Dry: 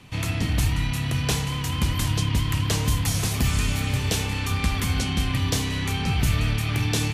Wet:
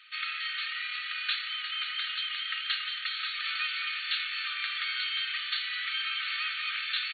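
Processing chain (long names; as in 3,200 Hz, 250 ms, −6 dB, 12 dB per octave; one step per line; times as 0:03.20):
linear-phase brick-wall band-pass 1,200–4,500 Hz
comb filter 3.2 ms, depth 43%
saturating transformer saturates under 210 Hz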